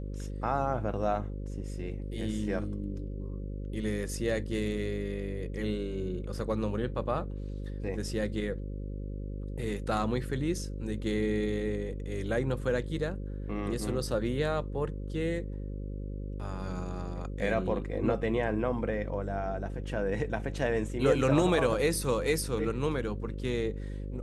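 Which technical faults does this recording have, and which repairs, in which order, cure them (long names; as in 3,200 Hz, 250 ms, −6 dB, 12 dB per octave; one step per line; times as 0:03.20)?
mains buzz 50 Hz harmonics 11 −37 dBFS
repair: hum removal 50 Hz, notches 11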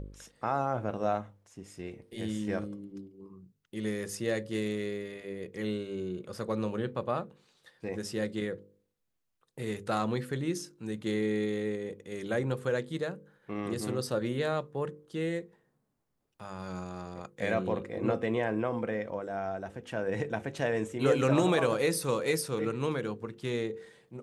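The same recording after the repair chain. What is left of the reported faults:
none of them is left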